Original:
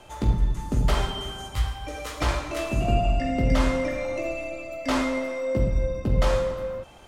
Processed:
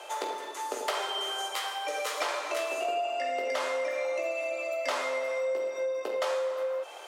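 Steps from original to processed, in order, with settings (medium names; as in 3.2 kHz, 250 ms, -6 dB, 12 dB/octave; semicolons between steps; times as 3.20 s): steep high-pass 420 Hz 36 dB/octave; compression 4:1, threshold -36 dBFS, peak gain reduction 11.5 dB; trim +6.5 dB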